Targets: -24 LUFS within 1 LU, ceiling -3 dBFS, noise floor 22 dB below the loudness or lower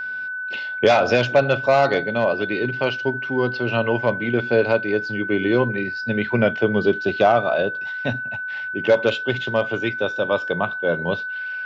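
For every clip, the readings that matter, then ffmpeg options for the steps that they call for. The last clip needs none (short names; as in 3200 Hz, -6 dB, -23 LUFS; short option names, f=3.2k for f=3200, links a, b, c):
steady tone 1500 Hz; tone level -26 dBFS; loudness -21.0 LUFS; peak -5.0 dBFS; loudness target -24.0 LUFS
-> -af "bandreject=f=1.5k:w=30"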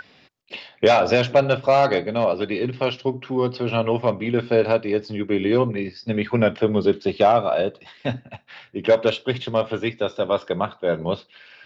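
steady tone none; loudness -21.5 LUFS; peak -5.5 dBFS; loudness target -24.0 LUFS
-> -af "volume=-2.5dB"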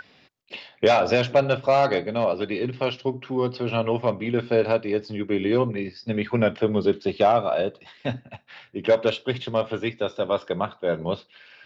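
loudness -24.0 LUFS; peak -8.0 dBFS; noise floor -57 dBFS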